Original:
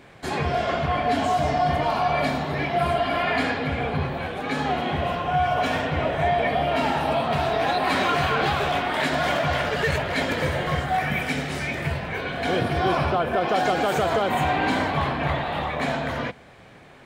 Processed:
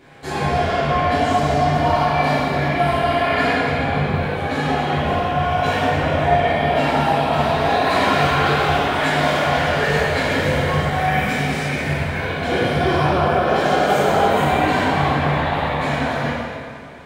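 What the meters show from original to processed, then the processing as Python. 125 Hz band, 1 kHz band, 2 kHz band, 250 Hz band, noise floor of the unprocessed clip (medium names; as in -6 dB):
+7.0 dB, +5.0 dB, +5.0 dB, +6.0 dB, -48 dBFS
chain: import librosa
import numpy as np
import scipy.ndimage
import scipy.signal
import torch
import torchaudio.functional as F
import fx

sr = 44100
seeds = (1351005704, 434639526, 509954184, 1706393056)

y = fx.rev_plate(x, sr, seeds[0], rt60_s=2.1, hf_ratio=0.85, predelay_ms=0, drr_db=-7.5)
y = y * librosa.db_to_amplitude(-3.0)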